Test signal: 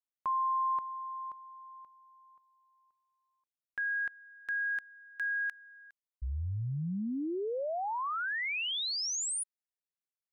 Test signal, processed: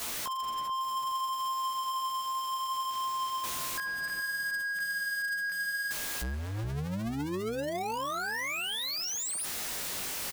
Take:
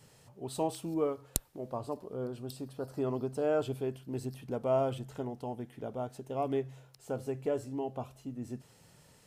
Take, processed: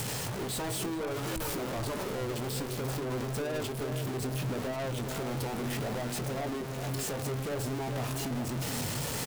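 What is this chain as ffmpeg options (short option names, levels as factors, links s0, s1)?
-filter_complex "[0:a]aeval=exprs='val(0)+0.5*0.0708*sgn(val(0))':c=same,acompressor=mode=upward:threshold=0.02:ratio=4:attack=37:release=24:knee=2.83:detection=peak,flanger=delay=16:depth=5.8:speed=0.64,asoftclip=type=tanh:threshold=0.0126,asplit=2[s0][s1];[s1]adelay=420,lowpass=f=940:p=1,volume=0.562,asplit=2[s2][s3];[s3]adelay=420,lowpass=f=940:p=1,volume=0.44,asplit=2[s4][s5];[s5]adelay=420,lowpass=f=940:p=1,volume=0.44,asplit=2[s6][s7];[s7]adelay=420,lowpass=f=940:p=1,volume=0.44,asplit=2[s8][s9];[s9]adelay=420,lowpass=f=940:p=1,volume=0.44[s10];[s0][s2][s4][s6][s8][s10]amix=inputs=6:normalize=0,volume=1.78"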